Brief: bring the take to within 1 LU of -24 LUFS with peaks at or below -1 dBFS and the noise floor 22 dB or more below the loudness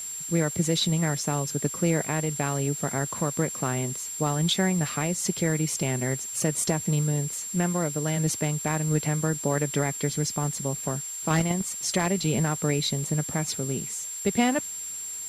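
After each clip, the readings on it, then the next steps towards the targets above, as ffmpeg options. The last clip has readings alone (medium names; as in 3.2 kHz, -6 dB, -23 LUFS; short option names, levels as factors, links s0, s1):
steady tone 7.4 kHz; tone level -33 dBFS; noise floor -36 dBFS; noise floor target -49 dBFS; loudness -26.5 LUFS; peak level -11.5 dBFS; loudness target -24.0 LUFS
-> -af "bandreject=f=7400:w=30"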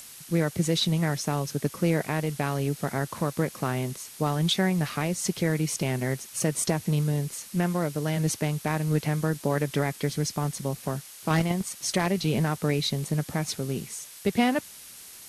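steady tone not found; noise floor -46 dBFS; noise floor target -50 dBFS
-> -af "afftdn=nr=6:nf=-46"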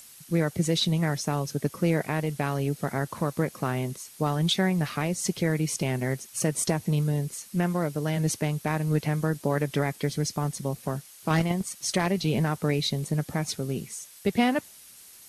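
noise floor -50 dBFS; loudness -27.5 LUFS; peak level -12.5 dBFS; loudness target -24.0 LUFS
-> -af "volume=1.5"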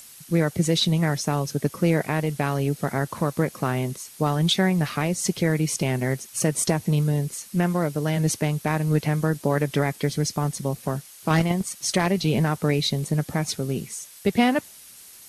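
loudness -24.0 LUFS; peak level -8.5 dBFS; noise floor -46 dBFS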